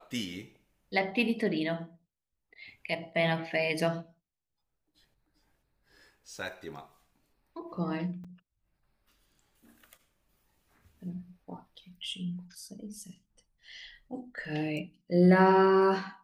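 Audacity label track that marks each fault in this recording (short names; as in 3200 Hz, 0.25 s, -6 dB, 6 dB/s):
8.240000	8.250000	gap 5.4 ms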